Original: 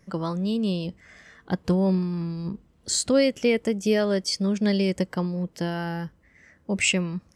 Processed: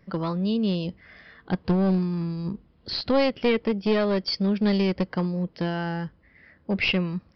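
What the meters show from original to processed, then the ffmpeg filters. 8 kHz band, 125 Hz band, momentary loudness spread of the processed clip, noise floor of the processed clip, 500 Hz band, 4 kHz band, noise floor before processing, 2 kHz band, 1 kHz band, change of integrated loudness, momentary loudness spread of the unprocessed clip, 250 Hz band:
below −25 dB, +0.5 dB, 10 LU, −60 dBFS, −0.5 dB, −0.5 dB, −61 dBFS, −0.5 dB, +3.0 dB, −0.5 dB, 11 LU, +0.5 dB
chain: -af "aeval=exprs='clip(val(0),-1,0.0794)':channel_layout=same,aresample=11025,aresample=44100,volume=1dB"

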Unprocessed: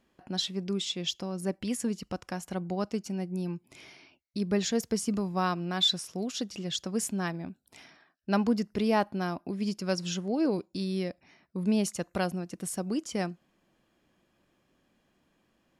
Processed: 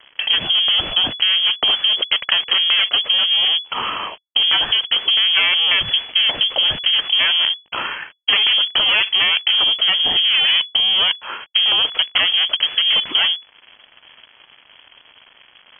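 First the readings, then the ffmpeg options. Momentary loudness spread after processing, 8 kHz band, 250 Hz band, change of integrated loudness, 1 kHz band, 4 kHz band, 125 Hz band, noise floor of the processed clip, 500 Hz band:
6 LU, below −40 dB, −12.5 dB, +16.5 dB, +8.0 dB, +24.5 dB, can't be measured, −52 dBFS, −2.5 dB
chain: -filter_complex "[0:a]apsyclip=32dB,asplit=2[link_01][link_02];[link_02]acompressor=threshold=-15dB:ratio=12,volume=-3dB[link_03];[link_01][link_03]amix=inputs=2:normalize=0,aeval=exprs='clip(val(0),-1,0.335)':channel_layout=same,acrossover=split=190|1000[link_04][link_05][link_06];[link_04]acompressor=threshold=-22dB:ratio=4[link_07];[link_05]acompressor=threshold=-14dB:ratio=4[link_08];[link_06]acompressor=threshold=-17dB:ratio=4[link_09];[link_07][link_08][link_09]amix=inputs=3:normalize=0,aresample=11025,aeval=exprs='sgn(val(0))*max(abs(val(0))-0.0251,0)':channel_layout=same,aresample=44100,lowpass=frequency=2900:width_type=q:width=0.5098,lowpass=frequency=2900:width_type=q:width=0.6013,lowpass=frequency=2900:width_type=q:width=0.9,lowpass=frequency=2900:width_type=q:width=2.563,afreqshift=-3400,volume=-2dB"

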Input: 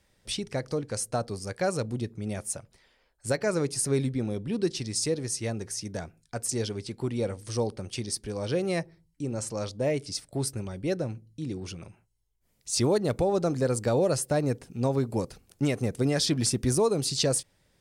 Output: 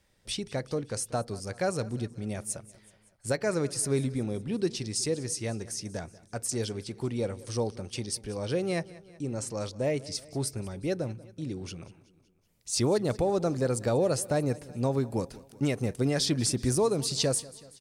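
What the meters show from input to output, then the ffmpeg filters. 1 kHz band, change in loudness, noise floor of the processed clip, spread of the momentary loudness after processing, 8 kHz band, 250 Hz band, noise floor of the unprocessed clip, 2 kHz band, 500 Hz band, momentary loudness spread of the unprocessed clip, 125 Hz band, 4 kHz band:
−1.5 dB, −1.5 dB, −63 dBFS, 11 LU, −1.5 dB, −1.5 dB, −70 dBFS, −1.5 dB, −1.5 dB, 11 LU, −1.5 dB, −1.5 dB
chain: -af "aecho=1:1:188|376|564|752:0.1|0.056|0.0314|0.0176,volume=-1.5dB"

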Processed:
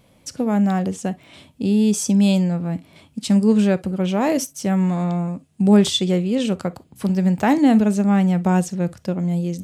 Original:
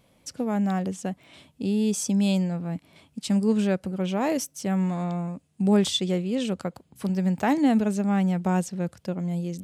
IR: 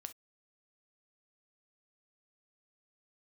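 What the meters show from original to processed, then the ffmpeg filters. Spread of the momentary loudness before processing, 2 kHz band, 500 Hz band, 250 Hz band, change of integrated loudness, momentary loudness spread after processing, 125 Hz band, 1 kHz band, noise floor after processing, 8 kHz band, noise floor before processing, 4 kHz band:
12 LU, +5.0 dB, +5.5 dB, +6.5 dB, +6.5 dB, 13 LU, +6.5 dB, +5.5 dB, −56 dBFS, +5.0 dB, −65 dBFS, +5.0 dB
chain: -filter_complex "[0:a]asplit=2[link_01][link_02];[1:a]atrim=start_sample=2205,lowshelf=frequency=320:gain=5[link_03];[link_02][link_03]afir=irnorm=-1:irlink=0,volume=3dB[link_04];[link_01][link_04]amix=inputs=2:normalize=0"

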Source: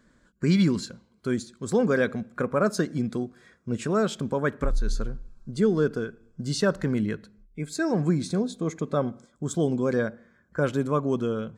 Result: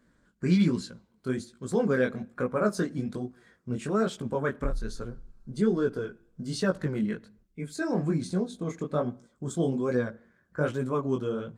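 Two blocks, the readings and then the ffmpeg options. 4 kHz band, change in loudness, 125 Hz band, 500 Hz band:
−5.0 dB, −3.0 dB, −3.0 dB, −3.0 dB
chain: -af "flanger=delay=16:depth=7.7:speed=1.2" -ar 48000 -c:a libopus -b:a 32k

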